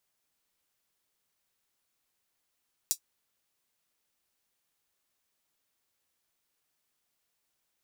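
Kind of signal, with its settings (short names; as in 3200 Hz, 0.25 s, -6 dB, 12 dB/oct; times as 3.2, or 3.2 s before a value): closed hi-hat, high-pass 5700 Hz, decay 0.09 s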